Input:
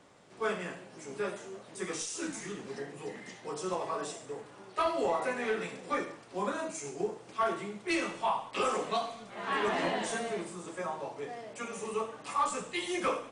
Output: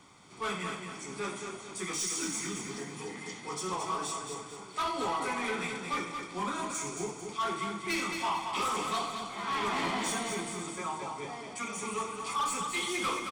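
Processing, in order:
high-shelf EQ 2,500 Hz +6.5 dB
comb filter 0.9 ms, depth 62%
soft clipping −27.5 dBFS, distortion −10 dB
on a send: repeating echo 222 ms, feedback 41%, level −6 dB

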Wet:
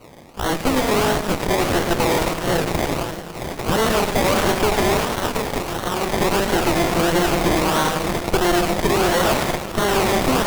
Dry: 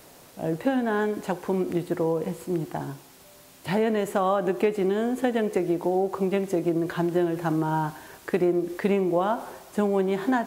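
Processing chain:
feedback delay that plays each chunk backwards 460 ms, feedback 73%, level −11.5 dB
in parallel at −2 dB: downward compressor, threshold −31 dBFS, peak gain reduction 13 dB
on the sum: soft clipping −14.5 dBFS, distortion −18 dB
0:04.97–0:06.09: tilt shelving filter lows −9 dB, about 1,100 Hz
sample-and-hold swept by an LFO 25×, swing 60% 1.5 Hz
on a send: echo with a time of its own for lows and highs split 310 Hz, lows 171 ms, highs 105 ms, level −11 dB
on the sum: harmonic generator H 8 −6 dB, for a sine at −10 dBFS

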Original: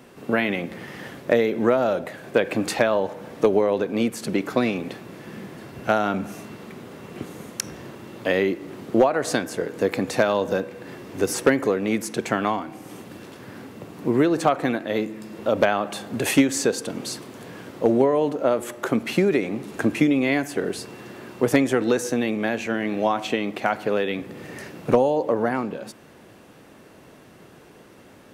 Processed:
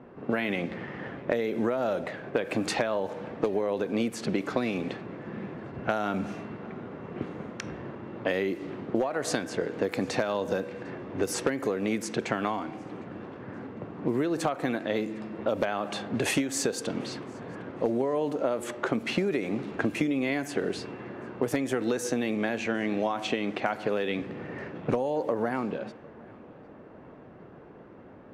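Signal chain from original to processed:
low-pass that shuts in the quiet parts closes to 1,200 Hz, open at −18.5 dBFS
downward compressor 6 to 1, threshold −24 dBFS, peak gain reduction 12 dB
on a send: tape delay 754 ms, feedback 54%, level −23 dB, low-pass 3,900 Hz

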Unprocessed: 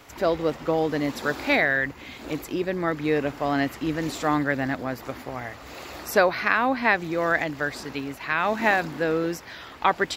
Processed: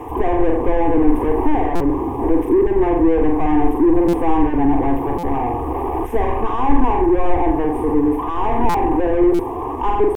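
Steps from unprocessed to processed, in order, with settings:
linear-phase brick-wall band-stop 1,200–7,900 Hz
flutter between parallel walls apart 7.8 metres, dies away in 0.46 s
in parallel at +1 dB: downward compressor 16 to 1, threshold −33 dBFS, peak gain reduction 19 dB
on the sum: high-shelf EQ 4,500 Hz +9 dB
bit reduction 8 bits
pitch shifter +1 semitone
mid-hump overdrive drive 33 dB, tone 1,600 Hz, clips at −5 dBFS
spectral tilt −4 dB per octave
phaser with its sweep stopped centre 890 Hz, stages 8
buffer that repeats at 0:01.75/0:04.08/0:05.18/0:08.69/0:09.34, samples 256, times 8
level −5.5 dB

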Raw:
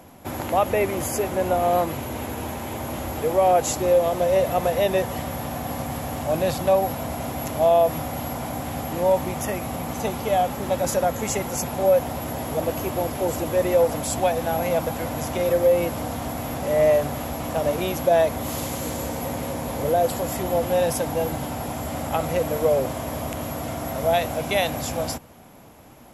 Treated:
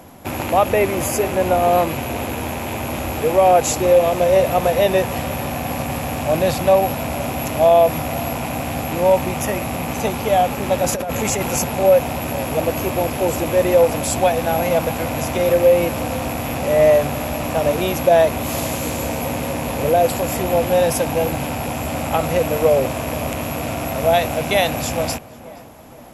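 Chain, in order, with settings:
loose part that buzzes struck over −40 dBFS, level −27 dBFS
0:10.93–0:11.64: compressor whose output falls as the input rises −26 dBFS, ratio −1
on a send: tape delay 473 ms, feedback 53%, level −17.5 dB, low-pass 1,900 Hz
on the sum: level +5 dB

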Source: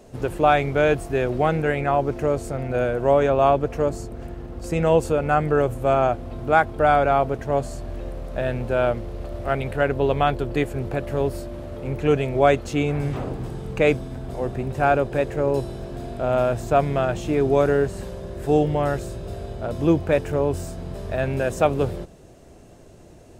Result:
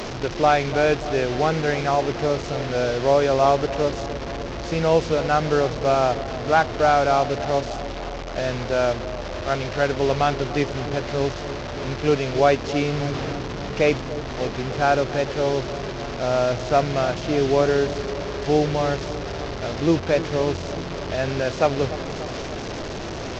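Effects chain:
linear delta modulator 32 kbit/s, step −24 dBFS
low-shelf EQ 150 Hz −3.5 dB
delay with a low-pass on its return 293 ms, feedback 69%, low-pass 930 Hz, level −13 dB

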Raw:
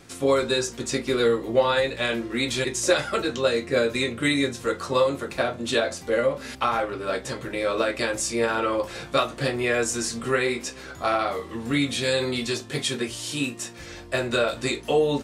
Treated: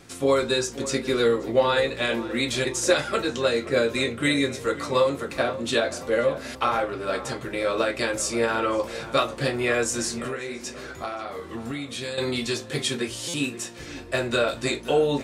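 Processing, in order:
0:10.21–0:12.18: downward compressor 10 to 1, threshold −29 dBFS, peak gain reduction 12 dB
on a send: tape delay 530 ms, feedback 52%, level −13.5 dB, low-pass 2,000 Hz
on the sum: buffer that repeats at 0:13.28, samples 256, times 9

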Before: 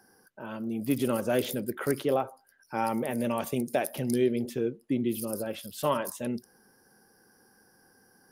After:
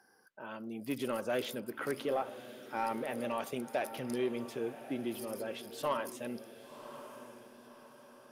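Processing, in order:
mid-hump overdrive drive 12 dB, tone 4,000 Hz, clips at −12.5 dBFS
feedback delay with all-pass diffusion 1,066 ms, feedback 43%, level −12.5 dB
level −9 dB

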